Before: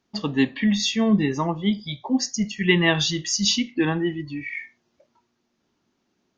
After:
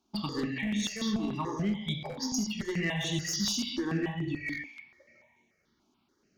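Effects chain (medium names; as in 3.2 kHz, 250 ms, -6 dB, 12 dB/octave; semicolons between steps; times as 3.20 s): compression 12:1, threshold -27 dBFS, peak gain reduction 15 dB; gated-style reverb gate 260 ms flat, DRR 1 dB; one-sided clip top -25 dBFS, bottom -20 dBFS; on a send: band-passed feedback delay 205 ms, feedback 46%, band-pass 2.3 kHz, level -20 dB; on the sum: stepped phaser 6.9 Hz 500–4800 Hz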